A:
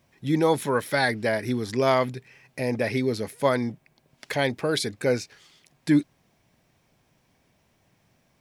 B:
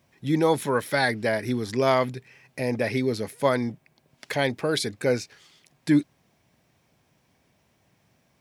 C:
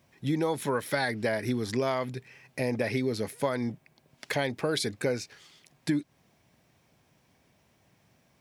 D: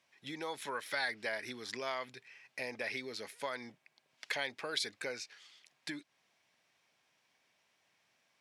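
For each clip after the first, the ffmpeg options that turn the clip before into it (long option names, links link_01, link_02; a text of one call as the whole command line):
ffmpeg -i in.wav -af "highpass=48" out.wav
ffmpeg -i in.wav -af "acompressor=threshold=-24dB:ratio=10" out.wav
ffmpeg -i in.wav -af "bandpass=frequency=3000:width_type=q:width=0.55:csg=0,volume=-2.5dB" out.wav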